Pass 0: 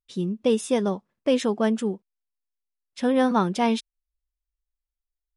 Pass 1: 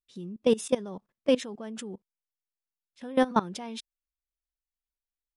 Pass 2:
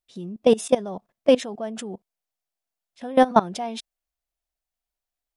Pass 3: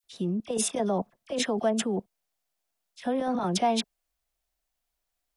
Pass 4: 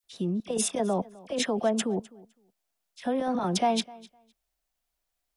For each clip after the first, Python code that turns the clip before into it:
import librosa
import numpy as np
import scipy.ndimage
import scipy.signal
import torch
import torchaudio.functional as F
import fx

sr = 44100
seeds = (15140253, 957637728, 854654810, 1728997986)

y1 = fx.level_steps(x, sr, step_db=19)
y2 = fx.peak_eq(y1, sr, hz=690.0, db=11.0, octaves=0.44)
y2 = y2 * librosa.db_to_amplitude(4.5)
y3 = fx.over_compress(y2, sr, threshold_db=-24.0, ratio=-1.0)
y3 = fx.dispersion(y3, sr, late='lows', ms=41.0, hz=1700.0)
y4 = fx.echo_feedback(y3, sr, ms=255, feedback_pct=16, wet_db=-22.0)